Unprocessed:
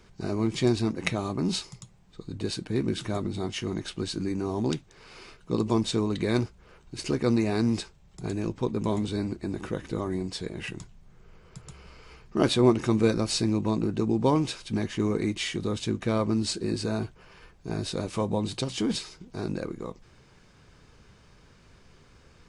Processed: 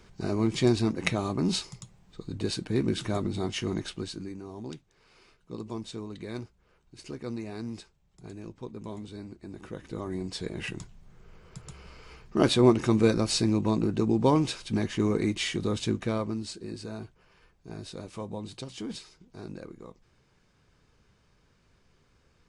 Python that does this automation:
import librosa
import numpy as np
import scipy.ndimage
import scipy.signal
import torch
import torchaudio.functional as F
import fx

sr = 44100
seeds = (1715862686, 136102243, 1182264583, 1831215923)

y = fx.gain(x, sr, db=fx.line((3.8, 0.5), (4.43, -12.0), (9.35, -12.0), (10.53, 0.5), (15.92, 0.5), (16.49, -9.5)))